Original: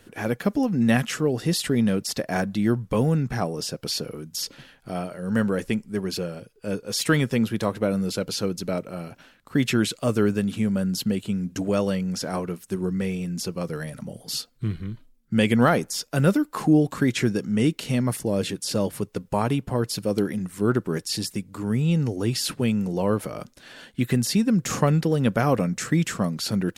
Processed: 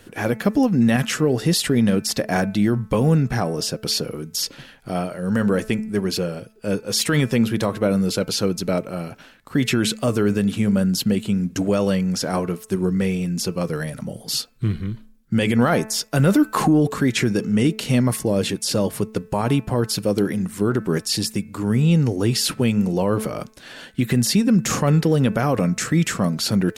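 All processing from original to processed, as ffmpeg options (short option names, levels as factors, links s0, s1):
-filter_complex "[0:a]asettb=1/sr,asplit=3[s0][s1][s2];[s0]atrim=end=16.174[s3];[s1]atrim=start=16.17:end=16.88,asetpts=PTS-STARTPTS,afade=t=in:d=0.004:c=qsin,afade=t=out:st=0.706:d=0.004:c=qsin,bandreject=f=5200:w=18,acontrast=44[s4];[s2]atrim=start=16.876[s5];[s3][s4]acrossfade=d=0.004:c1=hsin:c2=qsin[s6];[s6][s5]acrossfade=d=0.004:c1=qsin:c2=hsin,bandreject=f=218:t=h:w=4,bandreject=f=436:t=h:w=4,bandreject=f=654:t=h:w=4,bandreject=f=872:t=h:w=4,bandreject=f=1090:t=h:w=4,bandreject=f=1308:t=h:w=4,bandreject=f=1526:t=h:w=4,bandreject=f=1744:t=h:w=4,bandreject=f=1962:t=h:w=4,bandreject=f=2180:t=h:w=4,bandreject=f=2398:t=h:w=4,bandreject=f=2616:t=h:w=4,alimiter=level_in=4.73:limit=0.891:release=50:level=0:latency=1,volume=0.398"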